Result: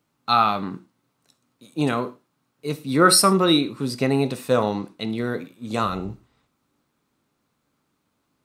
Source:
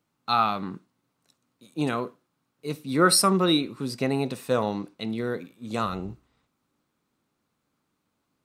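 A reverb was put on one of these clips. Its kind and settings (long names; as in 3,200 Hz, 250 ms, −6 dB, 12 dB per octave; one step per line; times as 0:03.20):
reverb whose tail is shaped and stops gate 140 ms falling, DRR 12 dB
level +4 dB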